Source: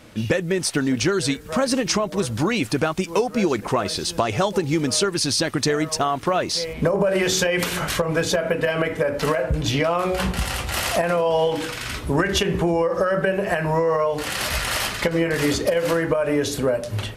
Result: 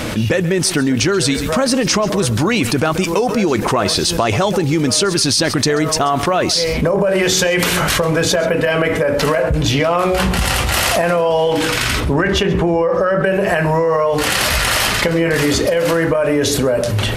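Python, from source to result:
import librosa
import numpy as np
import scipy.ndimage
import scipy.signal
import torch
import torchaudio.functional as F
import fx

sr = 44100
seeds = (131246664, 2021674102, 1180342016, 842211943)

y = fx.lowpass(x, sr, hz=3100.0, slope=6, at=(12.0, 13.24))
y = y + 10.0 ** (-20.0 / 20.0) * np.pad(y, (int(134 * sr / 1000.0), 0))[:len(y)]
y = fx.env_flatten(y, sr, amount_pct=70)
y = y * librosa.db_to_amplitude(2.5)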